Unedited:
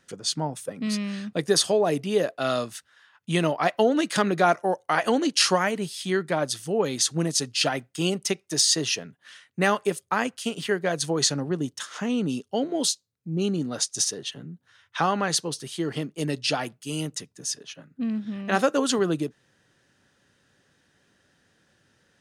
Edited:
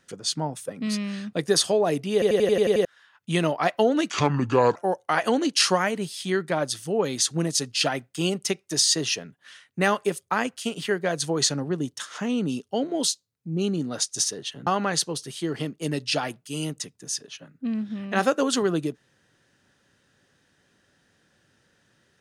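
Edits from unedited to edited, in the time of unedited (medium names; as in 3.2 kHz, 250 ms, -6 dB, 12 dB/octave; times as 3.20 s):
2.13 s: stutter in place 0.09 s, 8 plays
4.10–4.56 s: speed 70%
14.47–15.03 s: delete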